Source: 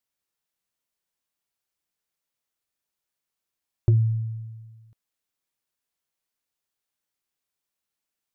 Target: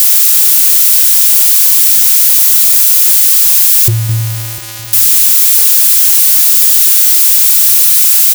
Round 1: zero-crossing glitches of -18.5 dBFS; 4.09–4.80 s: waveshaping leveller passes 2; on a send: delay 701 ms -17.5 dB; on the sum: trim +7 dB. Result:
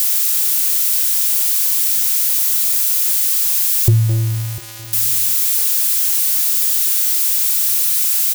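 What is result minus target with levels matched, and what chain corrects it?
zero-crossing glitches: distortion -9 dB
zero-crossing glitches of -9.5 dBFS; 4.09–4.80 s: waveshaping leveller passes 2; on a send: delay 701 ms -17.5 dB; on the sum: trim +7 dB

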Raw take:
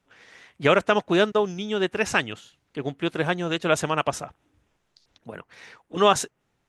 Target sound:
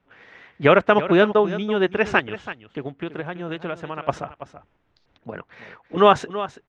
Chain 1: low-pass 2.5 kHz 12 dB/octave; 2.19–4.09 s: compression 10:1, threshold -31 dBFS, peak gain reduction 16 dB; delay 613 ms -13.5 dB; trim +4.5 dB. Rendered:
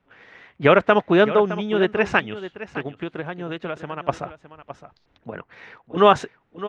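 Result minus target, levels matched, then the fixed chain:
echo 282 ms late
low-pass 2.5 kHz 12 dB/octave; 2.19–4.09 s: compression 10:1, threshold -31 dBFS, peak gain reduction 16 dB; delay 331 ms -13.5 dB; trim +4.5 dB

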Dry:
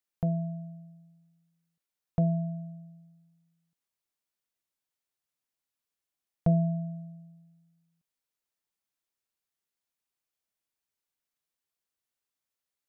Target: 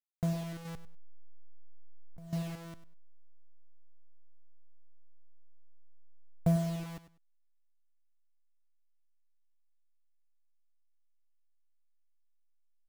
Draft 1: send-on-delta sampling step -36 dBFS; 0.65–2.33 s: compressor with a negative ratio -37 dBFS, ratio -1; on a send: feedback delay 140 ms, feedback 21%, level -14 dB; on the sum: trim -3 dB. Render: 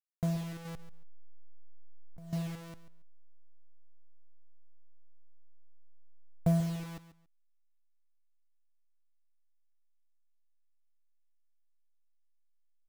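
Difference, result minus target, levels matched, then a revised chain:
echo 41 ms late
send-on-delta sampling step -36 dBFS; 0.65–2.33 s: compressor with a negative ratio -37 dBFS, ratio -1; on a send: feedback delay 99 ms, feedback 21%, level -14 dB; on the sum: trim -3 dB

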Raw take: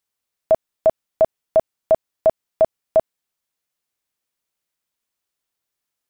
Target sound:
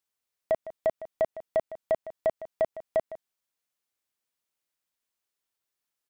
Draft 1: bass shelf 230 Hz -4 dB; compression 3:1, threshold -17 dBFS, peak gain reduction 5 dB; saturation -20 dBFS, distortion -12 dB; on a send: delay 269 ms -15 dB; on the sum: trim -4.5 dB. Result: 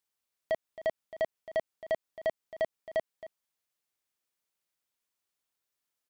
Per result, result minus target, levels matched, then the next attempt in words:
echo 112 ms late; saturation: distortion +9 dB
bass shelf 230 Hz -4 dB; compression 3:1, threshold -17 dBFS, peak gain reduction 5 dB; saturation -20 dBFS, distortion -12 dB; on a send: delay 157 ms -15 dB; on the sum: trim -4.5 dB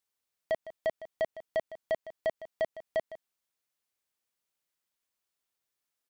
saturation: distortion +9 dB
bass shelf 230 Hz -4 dB; compression 3:1, threshold -17 dBFS, peak gain reduction 5 dB; saturation -12 dBFS, distortion -21 dB; on a send: delay 157 ms -15 dB; on the sum: trim -4.5 dB

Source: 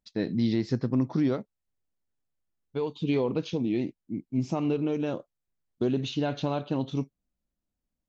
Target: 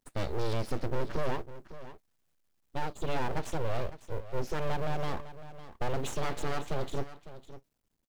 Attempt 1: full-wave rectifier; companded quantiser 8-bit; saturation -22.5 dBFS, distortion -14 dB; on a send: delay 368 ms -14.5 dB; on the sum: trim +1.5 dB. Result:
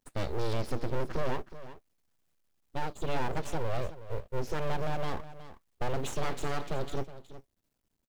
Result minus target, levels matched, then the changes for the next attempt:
echo 186 ms early
change: delay 554 ms -14.5 dB

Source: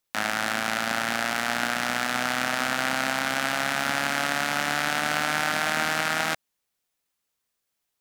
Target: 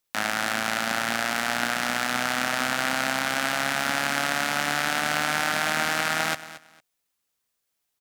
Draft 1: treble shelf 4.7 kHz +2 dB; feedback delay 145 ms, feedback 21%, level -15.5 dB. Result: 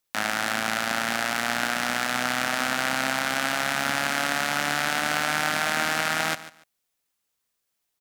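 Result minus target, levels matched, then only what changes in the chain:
echo 83 ms early
change: feedback delay 228 ms, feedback 21%, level -15.5 dB

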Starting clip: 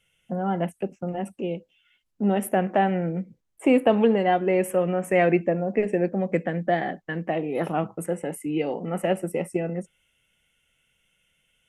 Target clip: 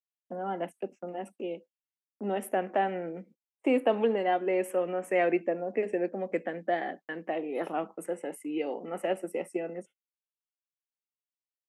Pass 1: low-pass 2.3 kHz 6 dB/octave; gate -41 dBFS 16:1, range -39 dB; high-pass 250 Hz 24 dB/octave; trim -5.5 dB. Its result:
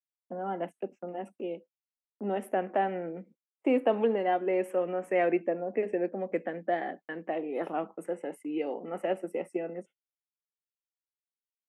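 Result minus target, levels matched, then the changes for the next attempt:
8 kHz band -8.5 dB
change: low-pass 8.5 kHz 6 dB/octave

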